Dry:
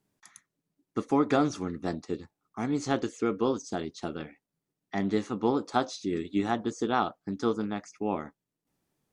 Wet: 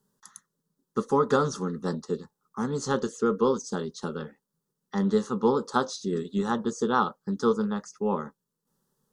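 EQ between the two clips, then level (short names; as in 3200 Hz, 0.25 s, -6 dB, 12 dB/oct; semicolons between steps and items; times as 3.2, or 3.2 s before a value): fixed phaser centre 460 Hz, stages 8; +6.0 dB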